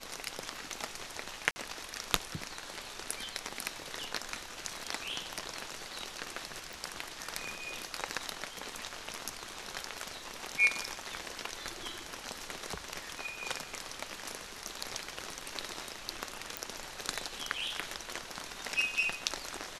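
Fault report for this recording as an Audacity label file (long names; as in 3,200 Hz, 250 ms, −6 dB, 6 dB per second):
1.510000	1.560000	drop-out 50 ms
6.730000	6.730000	click
16.570000	16.570000	click −15 dBFS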